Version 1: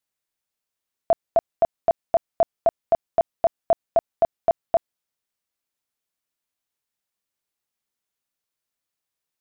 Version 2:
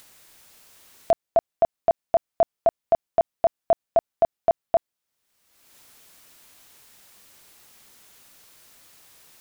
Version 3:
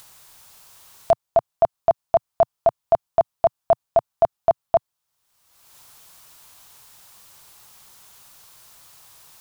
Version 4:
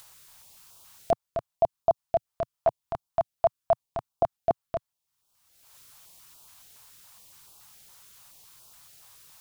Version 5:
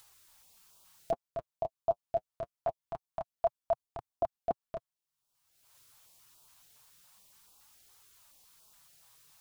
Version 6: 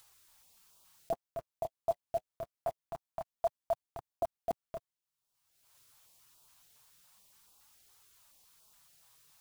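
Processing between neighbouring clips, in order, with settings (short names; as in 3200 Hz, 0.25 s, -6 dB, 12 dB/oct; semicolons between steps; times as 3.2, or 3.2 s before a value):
upward compressor, threshold -28 dBFS
graphic EQ 125/250/500/1000/2000 Hz +4/-8/-4/+5/-5 dB; gain +4 dB
stepped notch 7.1 Hz 250–1900 Hz; gain -4 dB
flange 0.25 Hz, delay 2.3 ms, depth 7.1 ms, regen -27%; gain -4.5 dB
block floating point 5-bit; gain -2.5 dB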